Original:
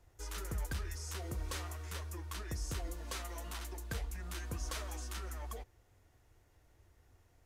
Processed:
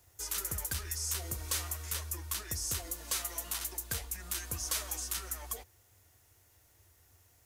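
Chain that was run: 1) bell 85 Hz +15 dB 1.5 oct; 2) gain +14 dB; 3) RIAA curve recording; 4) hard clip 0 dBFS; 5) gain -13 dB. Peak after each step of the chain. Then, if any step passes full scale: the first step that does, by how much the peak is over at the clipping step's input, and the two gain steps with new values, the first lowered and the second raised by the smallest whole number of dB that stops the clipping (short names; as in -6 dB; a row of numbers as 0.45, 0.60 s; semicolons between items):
-18.0, -4.0, -5.5, -5.5, -18.5 dBFS; no overload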